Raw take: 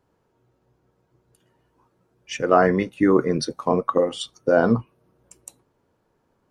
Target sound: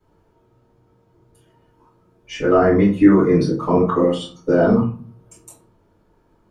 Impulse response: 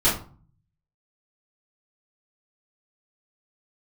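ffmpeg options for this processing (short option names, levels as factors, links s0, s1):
-filter_complex "[0:a]acrossover=split=410|1800[s0][s1][s2];[s0]acompressor=threshold=0.1:ratio=4[s3];[s1]acompressor=threshold=0.0631:ratio=4[s4];[s2]acompressor=threshold=0.01:ratio=4[s5];[s3][s4][s5]amix=inputs=3:normalize=0[s6];[1:a]atrim=start_sample=2205[s7];[s6][s7]afir=irnorm=-1:irlink=0,volume=0.335"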